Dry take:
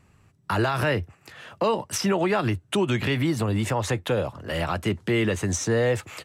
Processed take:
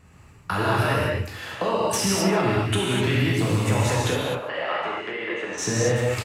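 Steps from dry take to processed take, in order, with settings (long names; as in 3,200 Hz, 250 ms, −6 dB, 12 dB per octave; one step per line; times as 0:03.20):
loose part that buzzes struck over −28 dBFS, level −31 dBFS
downward compressor, threshold −28 dBFS, peak gain reduction 9.5 dB
0:04.14–0:05.58: band-pass filter 570–2,400 Hz
single-tap delay 146 ms −16.5 dB
reverb whose tail is shaped and stops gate 280 ms flat, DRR −5.5 dB
level +3 dB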